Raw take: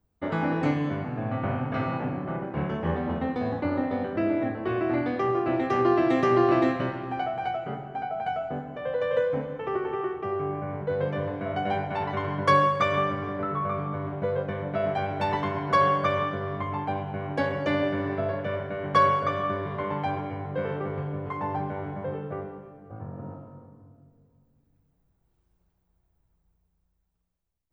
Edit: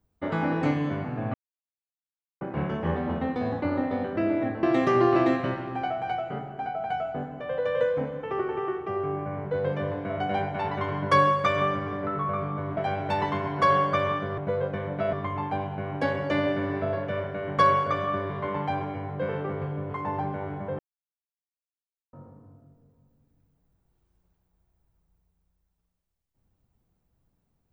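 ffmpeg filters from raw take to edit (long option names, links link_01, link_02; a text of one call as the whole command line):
ffmpeg -i in.wav -filter_complex "[0:a]asplit=9[link_01][link_02][link_03][link_04][link_05][link_06][link_07][link_08][link_09];[link_01]atrim=end=1.34,asetpts=PTS-STARTPTS,afade=type=out:start_time=1.336:duration=0.004:curve=hsin[link_10];[link_02]atrim=start=1.34:end=2.41,asetpts=PTS-STARTPTS,volume=0[link_11];[link_03]atrim=start=2.41:end=4.632,asetpts=PTS-STARTPTS,afade=type=in:duration=0.004:curve=hsin[link_12];[link_04]atrim=start=5.988:end=14.132[link_13];[link_05]atrim=start=14.878:end=16.492[link_14];[link_06]atrim=start=14.128:end=14.882[link_15];[link_07]atrim=start=16.488:end=22.15,asetpts=PTS-STARTPTS,afade=type=out:start_time=5.658:duration=0.004:curve=hsin[link_16];[link_08]atrim=start=22.15:end=23.49,asetpts=PTS-STARTPTS,volume=0[link_17];[link_09]atrim=start=23.49,asetpts=PTS-STARTPTS,afade=type=in:duration=0.004:curve=hsin[link_18];[link_10][link_11][link_12]concat=n=3:v=0:a=1[link_19];[link_19][link_13]acrossfade=duration=0.004:curve1=hsin:curve2=hsin[link_20];[link_20][link_14]acrossfade=duration=0.004:curve1=hsin:curve2=hsin[link_21];[link_21][link_15]acrossfade=duration=0.004:curve1=hsin:curve2=hsin[link_22];[link_16][link_17][link_18]concat=n=3:v=0:a=1[link_23];[link_22][link_23]acrossfade=duration=0.004:curve1=hsin:curve2=hsin" out.wav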